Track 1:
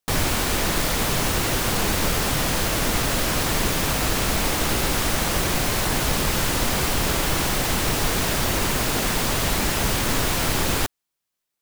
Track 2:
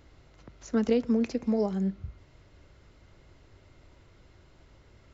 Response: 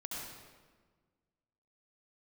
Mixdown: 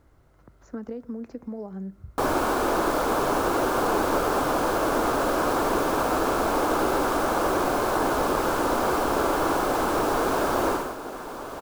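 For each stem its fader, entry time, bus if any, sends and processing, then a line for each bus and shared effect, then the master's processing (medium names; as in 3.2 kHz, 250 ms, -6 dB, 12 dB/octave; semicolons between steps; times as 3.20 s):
10.70 s -11.5 dB -> 10.97 s -23.5 dB, 2.10 s, no send, high-order bell 630 Hz +16 dB 2.9 oct; band-stop 1.9 kHz, Q 10
-2.5 dB, 0.00 s, no send, resonant high shelf 2 kHz -10.5 dB, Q 1.5; compression, threshold -29 dBFS, peak gain reduction 9.5 dB; word length cut 12-bit, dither none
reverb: none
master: none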